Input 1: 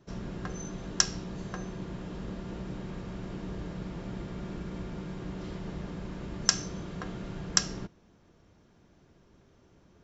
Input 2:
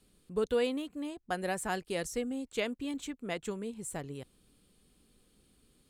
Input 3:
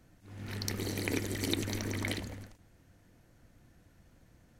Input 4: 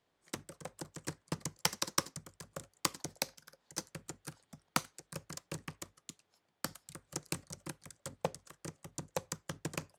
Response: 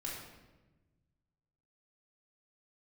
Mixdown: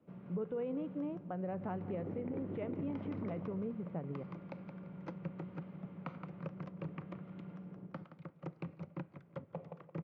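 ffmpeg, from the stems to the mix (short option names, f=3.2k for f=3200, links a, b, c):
-filter_complex "[0:a]acrossover=split=250|530|1200[a][b][c][d];[a]acompressor=threshold=-43dB:ratio=4[e];[b]acompressor=threshold=-51dB:ratio=4[f];[c]acompressor=threshold=-58dB:ratio=4[g];[d]acompressor=threshold=-47dB:ratio=4[h];[e][f][g][h]amix=inputs=4:normalize=0,volume=-11dB,asplit=2[i][j];[j]volume=-3.5dB[k];[1:a]lowpass=f=1.3k:p=1,volume=-0.5dB,asplit=4[l][m][n][o];[m]volume=-23.5dB[p];[n]volume=-24dB[q];[2:a]lowpass=1.1k,adelay=1200,volume=-6dB[r];[3:a]adelay=1300,volume=-0.5dB,asplit=3[s][t][u];[t]volume=-20.5dB[v];[u]volume=-17.5dB[w];[o]apad=whole_len=501928[x];[s][x]sidechaincompress=threshold=-50dB:ratio=8:attack=16:release=1030[y];[i][l]amix=inputs=2:normalize=0,alimiter=level_in=5.5dB:limit=-24dB:level=0:latency=1:release=286,volume=-5.5dB,volume=0dB[z];[4:a]atrim=start_sample=2205[aa];[p][v]amix=inputs=2:normalize=0[ab];[ab][aa]afir=irnorm=-1:irlink=0[ac];[k][q][w]amix=inputs=3:normalize=0,aecho=0:1:171|342|513|684:1|0.26|0.0676|0.0176[ad];[r][y][z][ac][ad]amix=inputs=5:normalize=0,highpass=f=100:w=0.5412,highpass=f=100:w=1.3066,equalizer=f=170:t=q:w=4:g=9,equalizer=f=550:t=q:w=4:g=4,equalizer=f=1.7k:t=q:w=4:g=-9,lowpass=f=2.2k:w=0.5412,lowpass=f=2.2k:w=1.3066,alimiter=level_in=7dB:limit=-24dB:level=0:latency=1:release=78,volume=-7dB"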